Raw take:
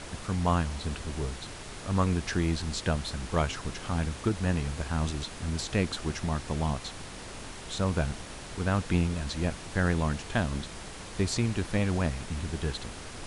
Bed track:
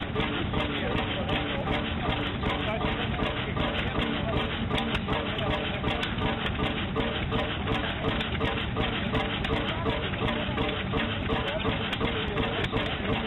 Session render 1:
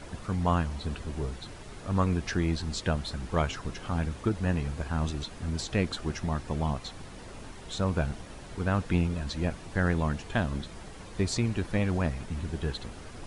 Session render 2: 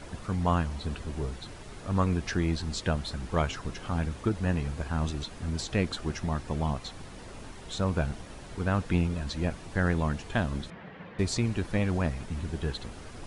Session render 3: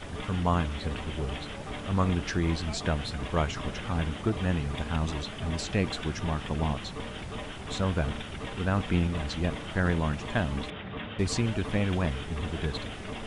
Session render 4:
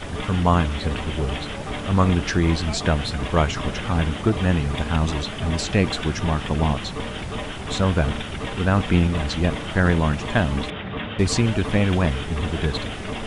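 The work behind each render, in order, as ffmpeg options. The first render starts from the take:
-af "afftdn=nr=8:nf=-43"
-filter_complex "[0:a]asettb=1/sr,asplit=3[s0][s1][s2];[s0]atrim=end=10.704[s3];[s1]atrim=start=10.7:end=11.19,asetpts=PTS-STARTPTS,afade=t=in:d=0.004:c=qsin,afade=t=out:st=0.486:d=0.004:c=qsin,highpass=140,equalizer=f=170:t=q:w=4:g=9,equalizer=f=340:t=q:w=4:g=-4,equalizer=f=530:t=q:w=4:g=3,equalizer=f=1800:t=q:w=4:g=6,lowpass=f=3000:w=0.5412,lowpass=f=3000:w=1.3066[s4];[s2]atrim=start=11.186[s5];[s3][s4]acrossfade=d=0.004:c1=hsin:c2=qsin[s6];[s6][s5]acrossfade=d=0.004:c1=qsin:c2=hsin"
-filter_complex "[1:a]volume=0.299[s0];[0:a][s0]amix=inputs=2:normalize=0"
-af "volume=2.51"

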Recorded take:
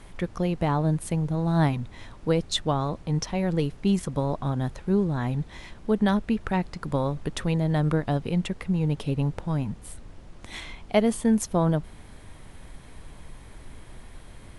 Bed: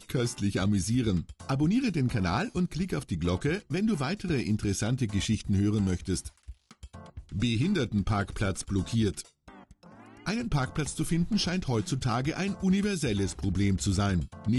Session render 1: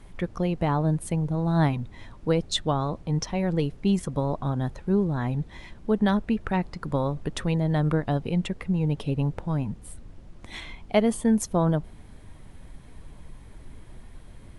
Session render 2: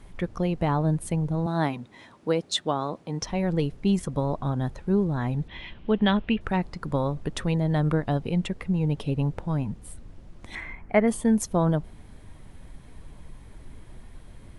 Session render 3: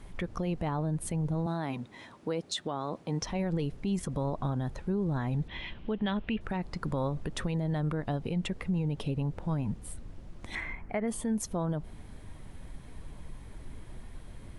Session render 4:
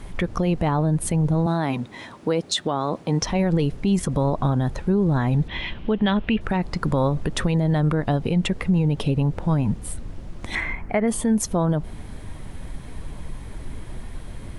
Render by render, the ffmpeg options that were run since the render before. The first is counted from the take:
-af "afftdn=nr=6:nf=-47"
-filter_complex "[0:a]asettb=1/sr,asplit=3[s0][s1][s2];[s0]atrim=end=1.464[s3];[s1]atrim=start=1.46:end=3.22,asetpts=PTS-STARTPTS,afade=t=in:d=0.004:c=qsin,afade=t=out:st=1.756:d=0.004:c=qsin,highpass=220[s4];[s2]atrim=start=3.216[s5];[s3][s4]acrossfade=d=0.004:c1=hsin:c2=qsin[s6];[s6][s5]acrossfade=d=0.004:c1=qsin:c2=hsin,asettb=1/sr,asplit=3[s7][s8][s9];[s7]atrim=end=5.484[s10];[s8]atrim=start=5.48:end=6.41,asetpts=PTS-STARTPTS,afade=t=in:d=0.004:c=qsin,afade=t=out:st=0.926:d=0.004:c=qsin,lowpass=f=3000:t=q:w=3.9[s11];[s9]atrim=start=6.406[s12];[s10][s11]acrossfade=d=0.004:c1=hsin:c2=qsin[s13];[s13][s12]acrossfade=d=0.004:c1=qsin:c2=hsin,asettb=1/sr,asplit=3[s14][s15][s16];[s14]atrim=end=10.554[s17];[s15]atrim=start=10.55:end=11.08,asetpts=PTS-STARTPTS,afade=t=in:d=0.004:c=qsin,afade=t=out:st=0.526:d=0.004:c=qsin,highshelf=f=2600:t=q:w=3:g=-9.5[s18];[s16]atrim=start=11.076[s19];[s17][s18]acrossfade=d=0.004:c1=hsin:c2=qsin[s20];[s20][s19]acrossfade=d=0.004:c1=qsin:c2=hsin"
-af "acompressor=threshold=0.0631:ratio=6,alimiter=limit=0.0708:level=0:latency=1:release=39"
-af "volume=3.35"

